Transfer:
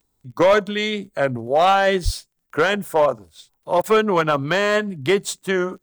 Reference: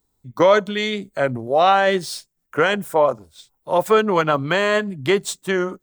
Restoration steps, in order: clip repair -9.5 dBFS; de-click; 2.04–2.16 HPF 140 Hz 24 dB/oct; interpolate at 3.82, 16 ms

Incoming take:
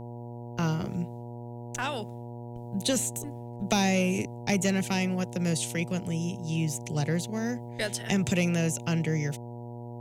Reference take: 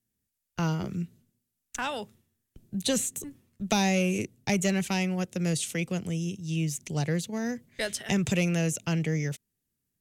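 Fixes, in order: de-hum 119.4 Hz, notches 8

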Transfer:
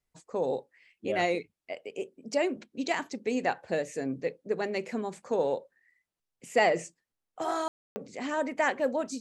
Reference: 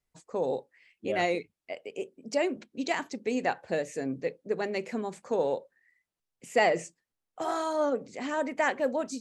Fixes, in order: room tone fill 7.68–7.96

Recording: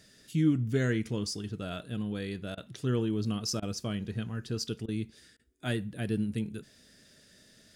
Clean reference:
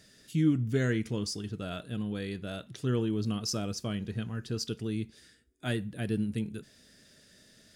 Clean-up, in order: interpolate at 2.55/3.6/4.86/5.37, 22 ms

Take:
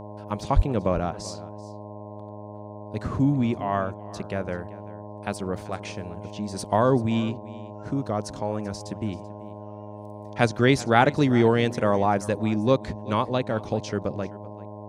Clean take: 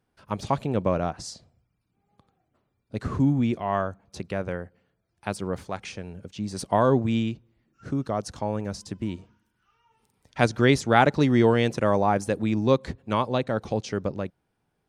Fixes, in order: de-hum 104.8 Hz, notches 10; notch 610 Hz, Q 30; 0.55–0.67 HPF 140 Hz 24 dB/oct; inverse comb 0.386 s -19 dB

